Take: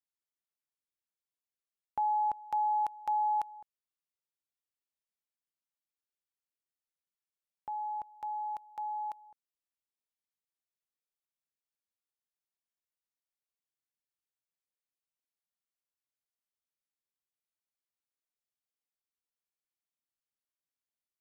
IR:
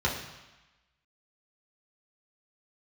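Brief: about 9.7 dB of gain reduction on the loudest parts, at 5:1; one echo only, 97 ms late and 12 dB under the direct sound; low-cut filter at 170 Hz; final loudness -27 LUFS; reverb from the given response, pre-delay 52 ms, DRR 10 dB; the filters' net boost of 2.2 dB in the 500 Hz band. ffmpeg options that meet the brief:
-filter_complex "[0:a]highpass=170,equalizer=f=500:t=o:g=3,acompressor=threshold=-38dB:ratio=5,aecho=1:1:97:0.251,asplit=2[a][b];[1:a]atrim=start_sample=2205,adelay=52[c];[b][c]afir=irnorm=-1:irlink=0,volume=-21dB[d];[a][d]amix=inputs=2:normalize=0,volume=12.5dB"

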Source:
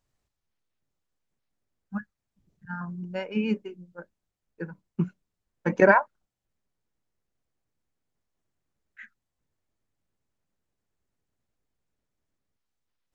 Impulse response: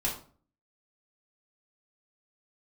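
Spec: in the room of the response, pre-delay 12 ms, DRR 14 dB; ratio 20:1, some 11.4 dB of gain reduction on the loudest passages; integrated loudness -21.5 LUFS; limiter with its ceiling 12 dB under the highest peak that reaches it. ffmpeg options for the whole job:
-filter_complex "[0:a]acompressor=threshold=-23dB:ratio=20,alimiter=limit=-24dB:level=0:latency=1,asplit=2[a][b];[1:a]atrim=start_sample=2205,adelay=12[c];[b][c]afir=irnorm=-1:irlink=0,volume=-20dB[d];[a][d]amix=inputs=2:normalize=0,volume=16.5dB"

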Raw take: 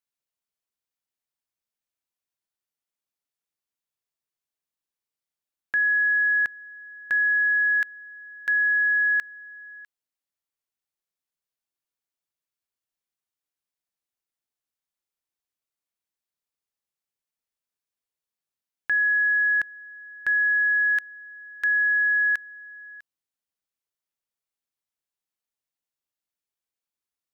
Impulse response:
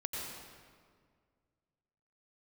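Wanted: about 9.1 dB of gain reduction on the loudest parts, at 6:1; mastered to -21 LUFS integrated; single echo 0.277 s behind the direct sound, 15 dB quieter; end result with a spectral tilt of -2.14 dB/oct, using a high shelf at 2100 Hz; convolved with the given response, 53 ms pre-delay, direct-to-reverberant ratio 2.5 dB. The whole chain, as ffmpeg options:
-filter_complex "[0:a]highshelf=f=2.1k:g=-8,acompressor=threshold=-33dB:ratio=6,aecho=1:1:277:0.178,asplit=2[a][b];[1:a]atrim=start_sample=2205,adelay=53[c];[b][c]afir=irnorm=-1:irlink=0,volume=-4.5dB[d];[a][d]amix=inputs=2:normalize=0,volume=9.5dB"

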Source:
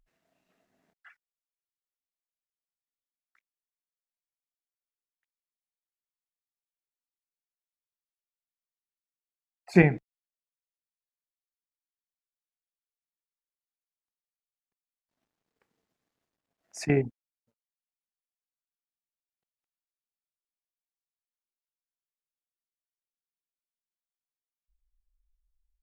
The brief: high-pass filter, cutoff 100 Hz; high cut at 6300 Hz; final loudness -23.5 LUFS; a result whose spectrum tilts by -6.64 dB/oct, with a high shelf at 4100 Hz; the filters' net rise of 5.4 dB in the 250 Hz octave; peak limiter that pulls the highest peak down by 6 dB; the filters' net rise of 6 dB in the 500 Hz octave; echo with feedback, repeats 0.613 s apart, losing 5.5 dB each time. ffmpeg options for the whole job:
-af "highpass=100,lowpass=6.3k,equalizer=f=250:t=o:g=7,equalizer=f=500:t=o:g=5,highshelf=f=4.1k:g=-5,alimiter=limit=-8dB:level=0:latency=1,aecho=1:1:613|1226|1839|2452|3065|3678|4291:0.531|0.281|0.149|0.079|0.0419|0.0222|0.0118,volume=4dB"

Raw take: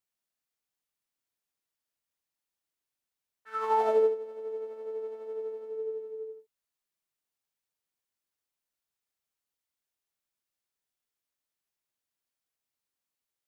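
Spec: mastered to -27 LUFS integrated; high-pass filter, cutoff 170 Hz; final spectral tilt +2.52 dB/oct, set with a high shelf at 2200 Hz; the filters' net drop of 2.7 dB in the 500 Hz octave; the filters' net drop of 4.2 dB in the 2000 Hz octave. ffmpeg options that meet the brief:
-af "highpass=170,equalizer=f=500:t=o:g=-3,equalizer=f=2k:t=o:g=-8,highshelf=f=2.2k:g=6,volume=7dB"

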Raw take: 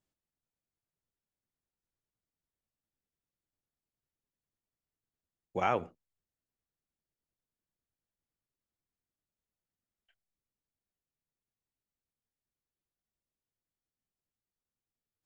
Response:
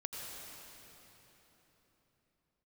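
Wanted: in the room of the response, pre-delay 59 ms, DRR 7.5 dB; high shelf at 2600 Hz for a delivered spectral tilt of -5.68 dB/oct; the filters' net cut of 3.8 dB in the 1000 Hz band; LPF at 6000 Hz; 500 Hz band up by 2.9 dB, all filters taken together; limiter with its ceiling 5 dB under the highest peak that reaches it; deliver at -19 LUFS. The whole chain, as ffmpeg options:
-filter_complex "[0:a]lowpass=6k,equalizer=f=500:t=o:g=6,equalizer=f=1k:t=o:g=-7.5,highshelf=f=2.6k:g=-7,alimiter=limit=-22.5dB:level=0:latency=1,asplit=2[a][b];[1:a]atrim=start_sample=2205,adelay=59[c];[b][c]afir=irnorm=-1:irlink=0,volume=-8dB[d];[a][d]amix=inputs=2:normalize=0,volume=20.5dB"

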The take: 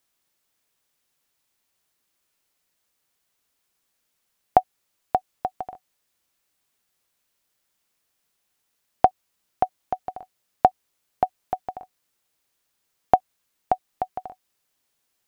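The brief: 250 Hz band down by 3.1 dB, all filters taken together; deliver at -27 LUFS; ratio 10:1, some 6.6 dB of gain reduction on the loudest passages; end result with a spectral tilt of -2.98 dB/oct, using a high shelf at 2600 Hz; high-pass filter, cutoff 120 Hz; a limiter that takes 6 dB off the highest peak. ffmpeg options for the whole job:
-af "highpass=120,equalizer=f=250:t=o:g=-4,highshelf=f=2.6k:g=7.5,acompressor=threshold=-18dB:ratio=10,volume=7.5dB,alimiter=limit=-2dB:level=0:latency=1"

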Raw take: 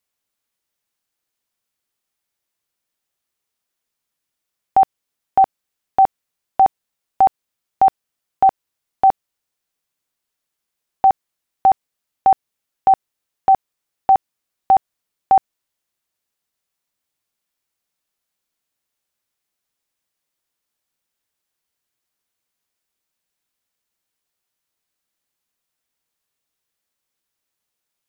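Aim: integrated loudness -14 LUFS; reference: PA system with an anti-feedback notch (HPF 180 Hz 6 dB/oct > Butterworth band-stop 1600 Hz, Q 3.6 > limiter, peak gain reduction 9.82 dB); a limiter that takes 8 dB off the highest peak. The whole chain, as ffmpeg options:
-af "alimiter=limit=-14.5dB:level=0:latency=1,highpass=f=180:p=1,asuperstop=centerf=1600:order=8:qfactor=3.6,volume=22dB,alimiter=limit=-2dB:level=0:latency=1"

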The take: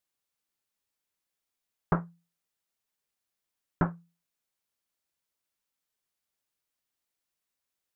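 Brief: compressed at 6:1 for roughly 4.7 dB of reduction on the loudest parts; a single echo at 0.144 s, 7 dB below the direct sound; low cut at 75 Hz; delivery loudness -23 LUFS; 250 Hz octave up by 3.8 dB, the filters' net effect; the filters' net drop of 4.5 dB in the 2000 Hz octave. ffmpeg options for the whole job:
-af "highpass=75,equalizer=f=250:t=o:g=7.5,equalizer=f=2k:t=o:g=-7,acompressor=threshold=-24dB:ratio=6,aecho=1:1:144:0.447,volume=13dB"

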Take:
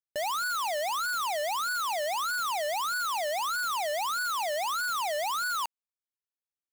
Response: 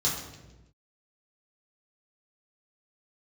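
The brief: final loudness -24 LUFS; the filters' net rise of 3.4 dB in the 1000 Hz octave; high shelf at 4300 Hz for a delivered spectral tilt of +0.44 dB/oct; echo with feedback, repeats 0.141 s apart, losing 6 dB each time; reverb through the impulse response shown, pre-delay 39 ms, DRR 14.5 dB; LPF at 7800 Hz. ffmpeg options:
-filter_complex "[0:a]lowpass=7.8k,equalizer=f=1k:t=o:g=4,highshelf=f=4.3k:g=6.5,aecho=1:1:141|282|423|564|705|846:0.501|0.251|0.125|0.0626|0.0313|0.0157,asplit=2[a][b];[1:a]atrim=start_sample=2205,adelay=39[c];[b][c]afir=irnorm=-1:irlink=0,volume=-23.5dB[d];[a][d]amix=inputs=2:normalize=0,volume=1.5dB"

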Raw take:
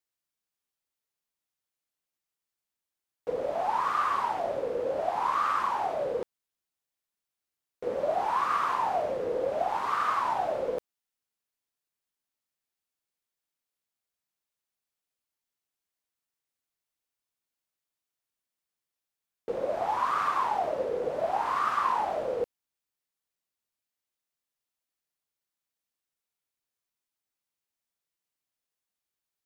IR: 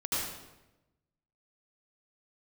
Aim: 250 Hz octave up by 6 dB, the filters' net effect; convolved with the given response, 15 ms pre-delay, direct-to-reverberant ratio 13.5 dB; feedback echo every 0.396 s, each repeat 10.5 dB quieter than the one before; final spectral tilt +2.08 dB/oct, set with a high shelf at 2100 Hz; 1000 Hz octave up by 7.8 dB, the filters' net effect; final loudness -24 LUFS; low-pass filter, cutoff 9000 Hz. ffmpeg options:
-filter_complex "[0:a]lowpass=9k,equalizer=f=250:t=o:g=7.5,equalizer=f=1k:t=o:g=8,highshelf=f=2.1k:g=4,aecho=1:1:396|792|1188:0.299|0.0896|0.0269,asplit=2[a][b];[1:a]atrim=start_sample=2205,adelay=15[c];[b][c]afir=irnorm=-1:irlink=0,volume=-20.5dB[d];[a][d]amix=inputs=2:normalize=0,volume=-2dB"

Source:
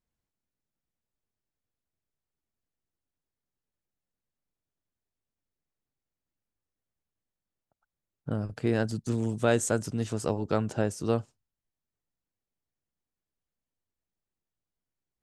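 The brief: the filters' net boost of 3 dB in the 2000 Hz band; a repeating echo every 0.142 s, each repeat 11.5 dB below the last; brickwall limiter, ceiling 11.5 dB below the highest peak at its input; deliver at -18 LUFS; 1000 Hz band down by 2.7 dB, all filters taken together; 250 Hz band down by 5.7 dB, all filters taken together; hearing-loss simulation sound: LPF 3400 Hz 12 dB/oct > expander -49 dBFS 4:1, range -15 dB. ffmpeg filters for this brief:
-af "equalizer=f=250:t=o:g=-7,equalizer=f=1k:t=o:g=-6.5,equalizer=f=2k:t=o:g=8,alimiter=limit=-22.5dB:level=0:latency=1,lowpass=3.4k,aecho=1:1:142|284|426:0.266|0.0718|0.0194,agate=range=-15dB:threshold=-49dB:ratio=4,volume=17.5dB"

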